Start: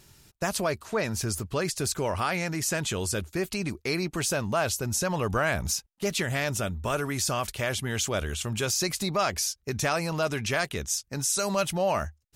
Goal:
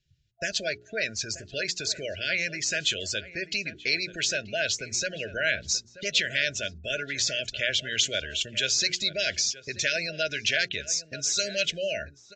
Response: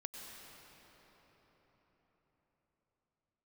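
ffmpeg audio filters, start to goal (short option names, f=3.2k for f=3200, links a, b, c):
-filter_complex "[0:a]afftfilt=real='re*(1-between(b*sr/4096,680,1400))':imag='im*(1-between(b*sr/4096,680,1400))':win_size=4096:overlap=0.75,afftdn=nr=27:nf=-42,equalizer=f=3.3k:w=0.97:g=12,bandreject=f=60:t=h:w=6,bandreject=f=120:t=h:w=6,bandreject=f=180:t=h:w=6,bandreject=f=240:t=h:w=6,bandreject=f=300:t=h:w=6,bandreject=f=360:t=h:w=6,bandreject=f=420:t=h:w=6,acrossover=split=500|3800[a][b][c];[a]acompressor=threshold=-41dB:ratio=5[d];[c]acrusher=bits=6:mode=log:mix=0:aa=0.000001[e];[d][b][e]amix=inputs=3:normalize=0,asplit=2[f][g];[g]adelay=932.9,volume=-14dB,highshelf=f=4k:g=-21[h];[f][h]amix=inputs=2:normalize=0,volume=-1.5dB" -ar 16000 -c:a aac -b:a 64k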